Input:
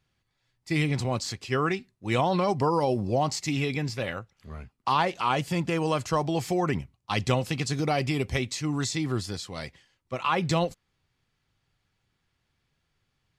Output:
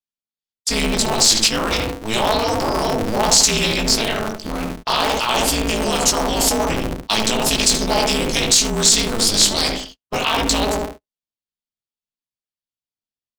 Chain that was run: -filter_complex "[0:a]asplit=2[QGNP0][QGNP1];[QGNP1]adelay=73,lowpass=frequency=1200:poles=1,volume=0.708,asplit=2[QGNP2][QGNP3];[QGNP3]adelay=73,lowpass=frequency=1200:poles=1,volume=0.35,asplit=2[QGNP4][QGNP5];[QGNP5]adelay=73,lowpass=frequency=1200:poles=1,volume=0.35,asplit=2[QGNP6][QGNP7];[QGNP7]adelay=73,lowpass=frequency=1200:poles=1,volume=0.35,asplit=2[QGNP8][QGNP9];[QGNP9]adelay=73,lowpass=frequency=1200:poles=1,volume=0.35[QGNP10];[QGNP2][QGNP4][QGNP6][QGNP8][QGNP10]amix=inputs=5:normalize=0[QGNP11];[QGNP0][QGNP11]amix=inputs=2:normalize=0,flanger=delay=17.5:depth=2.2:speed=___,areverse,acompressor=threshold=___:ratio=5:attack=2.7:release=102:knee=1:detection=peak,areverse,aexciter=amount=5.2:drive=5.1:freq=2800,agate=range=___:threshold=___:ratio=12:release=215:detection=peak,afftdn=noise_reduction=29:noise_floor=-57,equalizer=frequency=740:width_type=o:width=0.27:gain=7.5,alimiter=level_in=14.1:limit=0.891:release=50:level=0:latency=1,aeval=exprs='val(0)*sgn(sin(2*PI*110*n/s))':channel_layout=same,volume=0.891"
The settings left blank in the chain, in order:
0.56, 0.00794, 0.0708, 0.00141